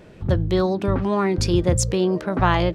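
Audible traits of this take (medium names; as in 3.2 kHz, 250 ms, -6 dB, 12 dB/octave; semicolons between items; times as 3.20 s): noise floor -45 dBFS; spectral tilt -5.5 dB/octave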